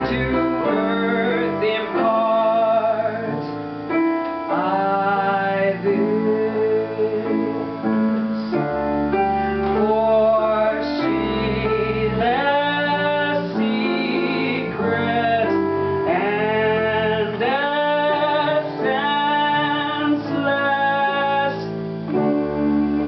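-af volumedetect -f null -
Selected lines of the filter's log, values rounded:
mean_volume: -19.6 dB
max_volume: -8.9 dB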